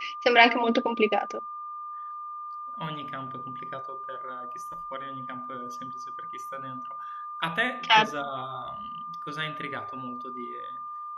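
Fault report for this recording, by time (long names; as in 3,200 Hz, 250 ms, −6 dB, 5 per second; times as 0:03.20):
whistle 1,200 Hz −35 dBFS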